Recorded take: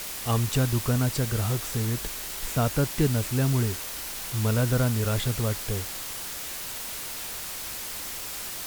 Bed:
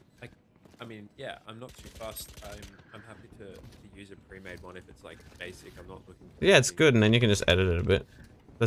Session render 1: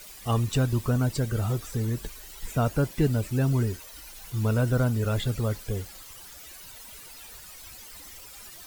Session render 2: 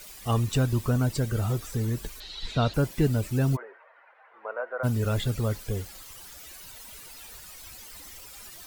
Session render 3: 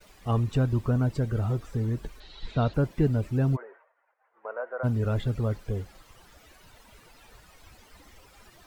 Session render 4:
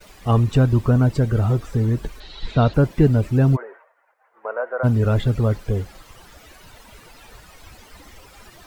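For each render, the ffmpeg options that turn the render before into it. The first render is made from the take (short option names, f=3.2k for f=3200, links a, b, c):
-af "afftdn=nr=14:nf=-36"
-filter_complex "[0:a]asettb=1/sr,asplit=3[a][b][c];[a]atrim=end=2.204[d];[b]atrim=start=2.2:end=2.74,asetpts=PTS-STARTPTS,afade=t=in:d=0.004:c=qsin,afade=t=out:st=0.536:d=0.004:c=qsin,lowpass=f=4k:t=q:w=7.3[e];[c]atrim=start=2.736[f];[d][e]acrossfade=d=0.004:c1=hsin:c2=qsin[g];[g][f]acrossfade=d=0.004:c1=qsin:c2=hsin,asplit=3[h][i][j];[h]afade=t=out:st=3.55:d=0.02[k];[i]asuperpass=centerf=1000:order=8:qfactor=0.69,afade=t=in:st=3.55:d=0.02,afade=t=out:st=4.83:d=0.02[l];[j]afade=t=in:st=4.83:d=0.02[m];[k][l][m]amix=inputs=3:normalize=0"
-af "agate=range=-33dB:threshold=-47dB:ratio=3:detection=peak,lowpass=f=1.3k:p=1"
-af "volume=8.5dB"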